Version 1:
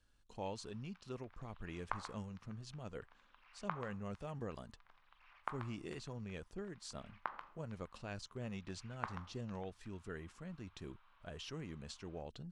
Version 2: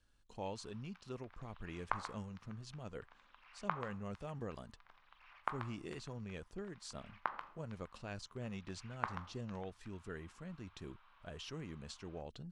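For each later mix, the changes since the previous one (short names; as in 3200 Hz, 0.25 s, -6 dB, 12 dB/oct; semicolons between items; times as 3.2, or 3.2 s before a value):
background +3.5 dB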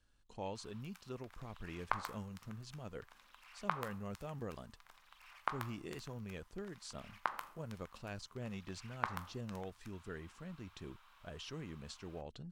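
background: remove air absorption 250 m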